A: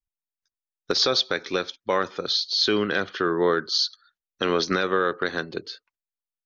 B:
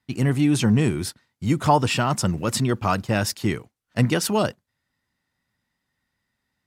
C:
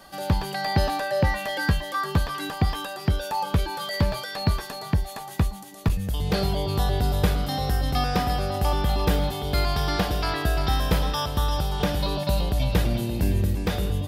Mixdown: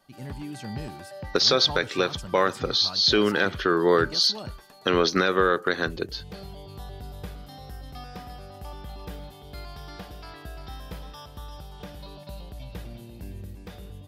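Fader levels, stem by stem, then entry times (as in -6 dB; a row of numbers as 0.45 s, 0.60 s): +1.5 dB, -18.0 dB, -16.5 dB; 0.45 s, 0.00 s, 0.00 s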